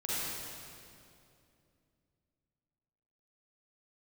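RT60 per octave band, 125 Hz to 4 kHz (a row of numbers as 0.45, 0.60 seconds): 3.4, 3.3, 2.9, 2.4, 2.2, 2.1 seconds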